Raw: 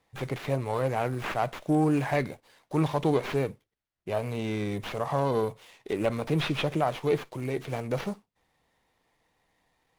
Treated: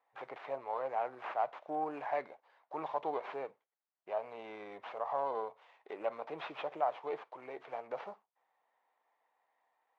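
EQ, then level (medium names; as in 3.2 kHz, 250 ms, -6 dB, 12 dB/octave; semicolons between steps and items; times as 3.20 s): dynamic bell 1.5 kHz, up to -4 dB, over -41 dBFS, Q 0.96; ladder band-pass 1 kHz, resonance 30%; +6.5 dB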